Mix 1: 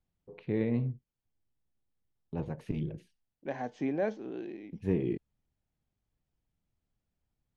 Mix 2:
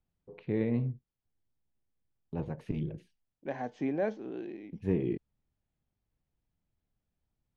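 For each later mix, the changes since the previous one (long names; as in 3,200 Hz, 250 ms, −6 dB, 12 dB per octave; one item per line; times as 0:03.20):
master: add high-shelf EQ 5,300 Hz −5.5 dB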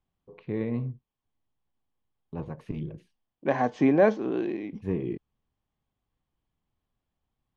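second voice +11.0 dB
master: add parametric band 1,100 Hz +8.5 dB 0.3 octaves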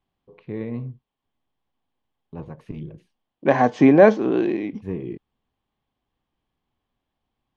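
second voice +8.0 dB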